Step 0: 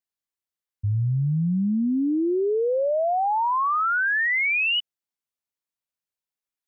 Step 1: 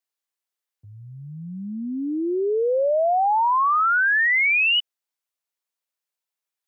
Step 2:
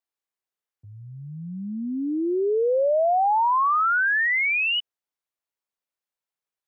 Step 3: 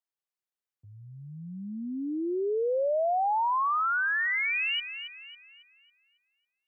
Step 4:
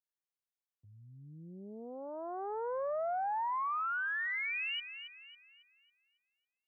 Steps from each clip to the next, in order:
high-pass 410 Hz 12 dB/octave; trim +3.5 dB
treble shelf 2.4 kHz -7.5 dB
feedback echo behind a high-pass 275 ms, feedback 41%, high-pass 2 kHz, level -9 dB; trim -6 dB
loudspeaker Doppler distortion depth 0.87 ms; trim -8 dB

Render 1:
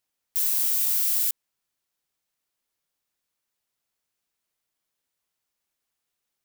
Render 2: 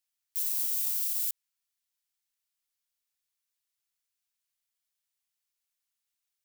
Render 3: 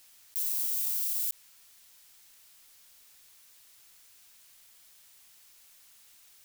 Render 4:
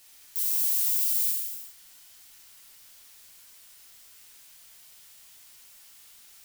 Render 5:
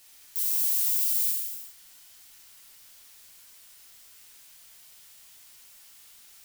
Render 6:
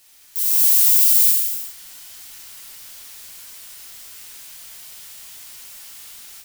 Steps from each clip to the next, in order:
amplifier tone stack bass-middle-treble 10-0-10; peak limiter -17.5 dBFS, peak gain reduction 8 dB; trim -2.5 dB
level flattener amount 50%; trim -1 dB
gated-style reverb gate 430 ms falling, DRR -2.5 dB; trim +1 dB
no audible change
level rider gain up to 11 dB; trim +2 dB

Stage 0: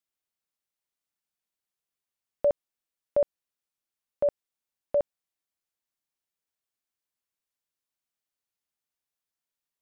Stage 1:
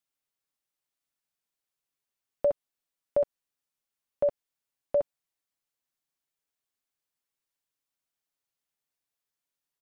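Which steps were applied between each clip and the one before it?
comb 7.2 ms, depth 37%; compression, threshold -21 dBFS, peak gain reduction 4 dB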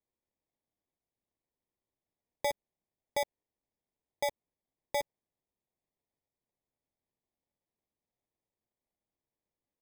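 sample-and-hold 31×; trim -7 dB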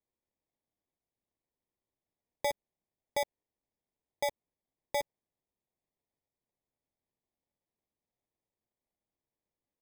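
no audible change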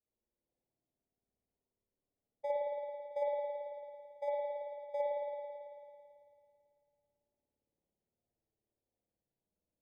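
spectral contrast enhancement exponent 2.3; spring tank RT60 2.4 s, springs 55 ms, chirp 75 ms, DRR -7.5 dB; trim -7.5 dB

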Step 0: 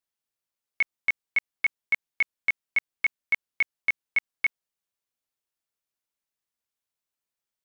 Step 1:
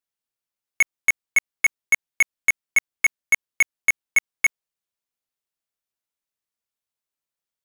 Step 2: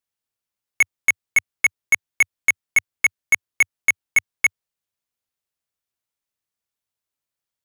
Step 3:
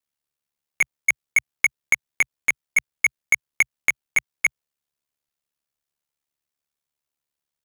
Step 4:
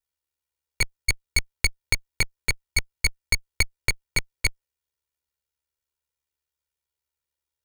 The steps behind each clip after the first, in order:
waveshaping leveller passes 3; trim +4.5 dB
peaking EQ 95 Hz +6.5 dB 0.8 oct; trim +1.5 dB
compression, threshold -15 dBFS, peak gain reduction 3.5 dB; ring modulator 36 Hz; trim +3 dB
comb filter that takes the minimum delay 2.1 ms; trim -1 dB

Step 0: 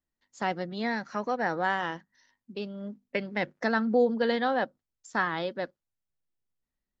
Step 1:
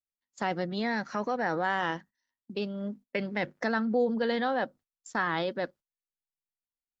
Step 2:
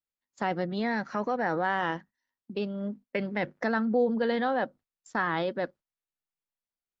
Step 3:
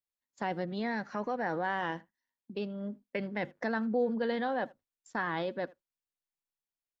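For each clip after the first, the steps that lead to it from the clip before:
gate -51 dBFS, range -22 dB; in parallel at -2 dB: compressor with a negative ratio -33 dBFS, ratio -1; on the sum: trim -4 dB
treble shelf 4.4 kHz -10.5 dB; trim +1.5 dB
band-stop 1.3 kHz, Q 14; speakerphone echo 80 ms, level -23 dB; trim -4.5 dB

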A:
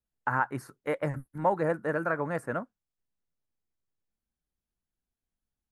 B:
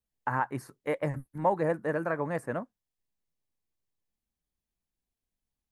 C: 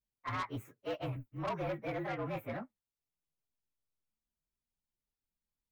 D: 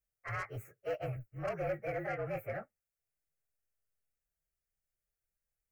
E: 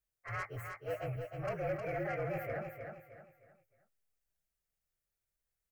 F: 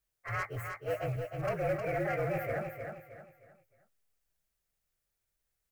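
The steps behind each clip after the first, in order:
peaking EQ 1.4 kHz -9 dB 0.24 oct
frequency axis rescaled in octaves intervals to 114%; saturation -30.5 dBFS, distortion -10 dB; trim -1.5 dB
static phaser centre 980 Hz, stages 6; trim +3 dB
transient shaper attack -4 dB, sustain +1 dB; on a send: feedback delay 311 ms, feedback 35%, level -6 dB
short-mantissa float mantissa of 4-bit; trim +4.5 dB

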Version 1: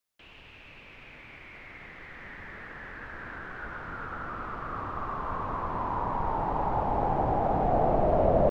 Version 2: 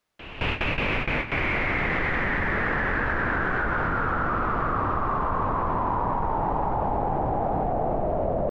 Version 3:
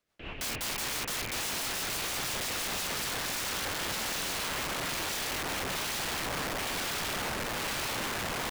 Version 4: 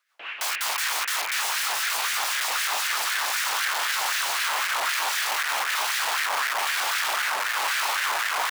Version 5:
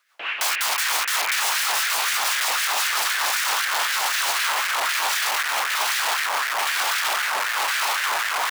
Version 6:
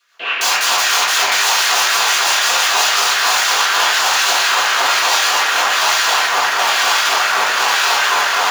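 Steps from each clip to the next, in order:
gate with hold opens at -38 dBFS; low-pass 1.8 kHz 6 dB/octave; level flattener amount 100%; trim -4.5 dB
in parallel at -3 dB: peak limiter -21 dBFS, peak gain reduction 7.5 dB; on the sum: rotary cabinet horn 6 Hz, later 1.1 Hz, at 2.59 s; integer overflow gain 25 dB; trim -4 dB
LFO high-pass sine 3.9 Hz 800–1700 Hz; trim +6 dB
peak limiter -21 dBFS, peak gain reduction 8 dB; trim +7.5 dB
reverberation RT60 1.2 s, pre-delay 3 ms, DRR -11 dB; trim -2.5 dB

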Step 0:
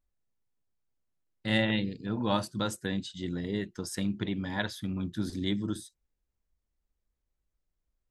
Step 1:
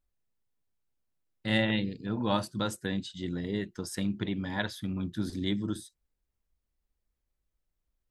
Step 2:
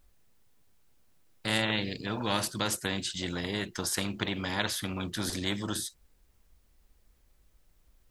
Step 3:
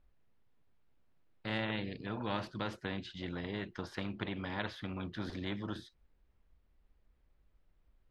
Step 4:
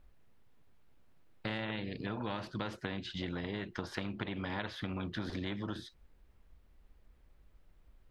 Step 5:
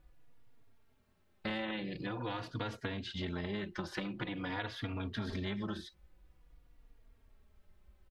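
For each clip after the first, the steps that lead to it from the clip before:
peaking EQ 6.6 kHz -2 dB
spectrum-flattening compressor 2:1
distance through air 310 m; trim -5 dB
compression 6:1, threshold -42 dBFS, peak gain reduction 11.5 dB; trim +7.5 dB
endless flanger 3.6 ms -0.47 Hz; trim +3 dB

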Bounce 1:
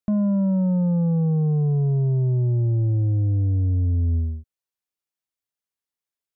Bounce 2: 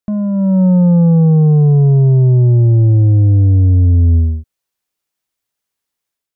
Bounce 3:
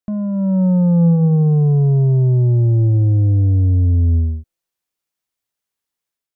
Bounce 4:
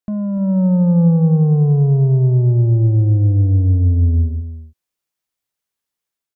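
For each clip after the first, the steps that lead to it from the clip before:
level rider gain up to 8.5 dB; trim +3 dB
feedback comb 170 Hz, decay 1.6 s, mix 40%
delay 294 ms -13 dB

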